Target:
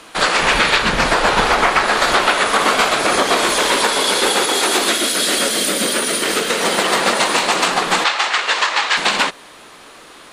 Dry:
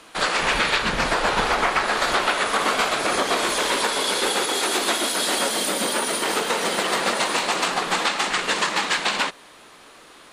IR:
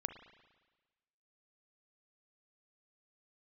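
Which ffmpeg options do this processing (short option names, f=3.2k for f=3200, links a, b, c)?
-filter_complex "[0:a]asettb=1/sr,asplit=3[a][b][c];[a]atrim=end=4.884[d];[b]atrim=start=4.88:end=6.6,asetpts=PTS-STARTPTS,afade=t=in:d=0.004:c=qsin,afade=t=out:st=1.716:d=0.004:c=qsin,equalizer=f=880:t=o:w=0.66:g=-10[e];[c]atrim=start=6.596[f];[d][e]acrossfade=d=0.004:c1=hsin:c2=qsin[g];[g][f]acrossfade=d=0.004:c1=qsin:c2=hsin,asettb=1/sr,asplit=3[h][i][j];[h]atrim=end=8.044[k];[i]atrim=start=8.04:end=8.97,asetpts=PTS-STARTPTS,afade=t=in:d=0.004:c=qsin,afade=t=out:st=0.926:d=0.004:c=qsin,highpass=640,lowpass=5.9k[l];[j]atrim=start=8.966[m];[k][l]acrossfade=d=0.004:c1=hsin:c2=qsin[n];[n][m]acrossfade=d=0.004:c1=qsin:c2=hsin,volume=6.5dB"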